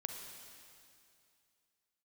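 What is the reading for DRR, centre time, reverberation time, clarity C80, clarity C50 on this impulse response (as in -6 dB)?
3.5 dB, 67 ms, 2.5 s, 5.0 dB, 4.0 dB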